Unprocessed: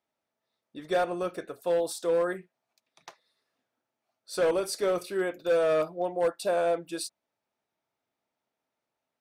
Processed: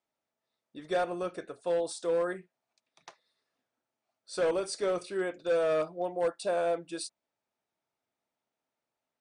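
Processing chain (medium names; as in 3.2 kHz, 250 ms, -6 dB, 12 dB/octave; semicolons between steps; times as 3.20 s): brick-wall FIR low-pass 9.9 kHz; trim -3 dB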